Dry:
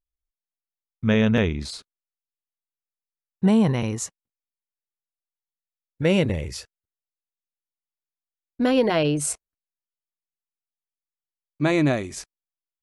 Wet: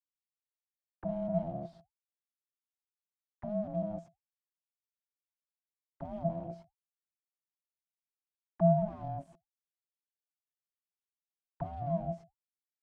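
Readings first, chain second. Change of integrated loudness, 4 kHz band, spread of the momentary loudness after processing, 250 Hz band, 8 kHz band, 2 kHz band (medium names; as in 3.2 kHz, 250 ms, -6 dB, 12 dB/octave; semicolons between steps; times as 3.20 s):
-12.5 dB, under -35 dB, 18 LU, -15.5 dB, under -40 dB, under -30 dB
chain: fuzz box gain 44 dB, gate -45 dBFS; auto-wah 250–1600 Hz, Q 21, down, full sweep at -16 dBFS; ring modulator 420 Hz; small resonant body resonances 350/3200 Hz, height 8 dB; trim -1 dB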